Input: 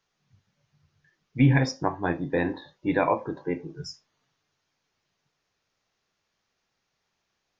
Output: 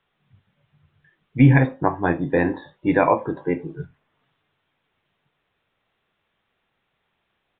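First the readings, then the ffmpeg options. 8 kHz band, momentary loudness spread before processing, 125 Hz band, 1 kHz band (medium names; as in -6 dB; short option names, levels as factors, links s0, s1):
no reading, 18 LU, +6.0 dB, +6.0 dB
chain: -filter_complex "[0:a]acrossover=split=3100[s0][s1];[s1]acompressor=threshold=0.00126:ratio=6[s2];[s0][s2]amix=inputs=2:normalize=0,aresample=8000,aresample=44100,volume=2"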